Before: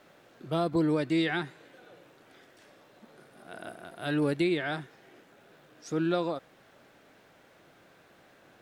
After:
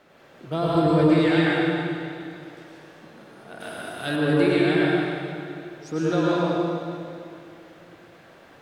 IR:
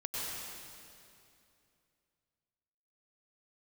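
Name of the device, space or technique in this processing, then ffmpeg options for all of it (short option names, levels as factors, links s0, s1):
swimming-pool hall: -filter_complex "[1:a]atrim=start_sample=2205[s0];[0:a][s0]afir=irnorm=-1:irlink=0,highshelf=f=5900:g=-6.5,asettb=1/sr,asplit=3[s1][s2][s3];[s1]atrim=end=3.604[s4];[s2]atrim=start=3.6:end=4.16,asetpts=PTS-STARTPTS,afade=t=in:d=0.004:c=qsin,afade=t=out:st=0.556:d=0.004:c=qsin,highshelf=f=2800:g=10.5[s5];[s3]atrim=start=4.156[s6];[s4][s5]acrossfade=d=0.004:c1=hsin:c2=qsin[s7];[s7][s6]acrossfade=d=0.004:c1=qsin:c2=hsin,volume=1.88"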